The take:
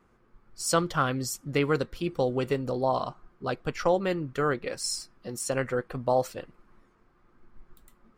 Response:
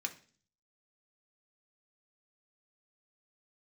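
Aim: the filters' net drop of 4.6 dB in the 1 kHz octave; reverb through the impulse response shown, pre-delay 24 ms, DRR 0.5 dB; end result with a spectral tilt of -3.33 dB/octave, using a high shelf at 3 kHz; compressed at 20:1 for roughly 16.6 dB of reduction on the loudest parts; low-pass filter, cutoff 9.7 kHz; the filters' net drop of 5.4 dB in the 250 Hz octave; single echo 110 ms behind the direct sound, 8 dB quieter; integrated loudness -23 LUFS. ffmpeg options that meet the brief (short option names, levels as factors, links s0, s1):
-filter_complex "[0:a]lowpass=9700,equalizer=f=250:t=o:g=-7.5,equalizer=f=1000:t=o:g=-6.5,highshelf=f=3000:g=3.5,acompressor=threshold=0.0112:ratio=20,aecho=1:1:110:0.398,asplit=2[s0][s1];[1:a]atrim=start_sample=2205,adelay=24[s2];[s1][s2]afir=irnorm=-1:irlink=0,volume=0.841[s3];[s0][s3]amix=inputs=2:normalize=0,volume=8.41"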